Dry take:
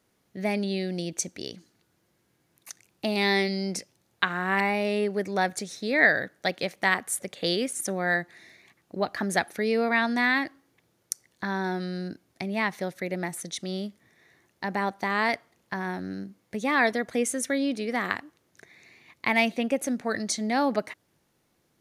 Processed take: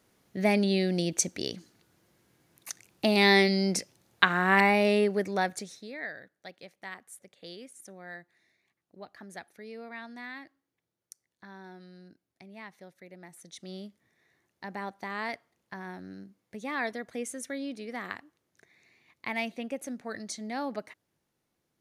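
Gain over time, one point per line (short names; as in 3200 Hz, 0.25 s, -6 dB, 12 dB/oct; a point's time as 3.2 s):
4.9 s +3 dB
5.69 s -6 dB
6 s -18.5 dB
13.21 s -18.5 dB
13.69 s -9.5 dB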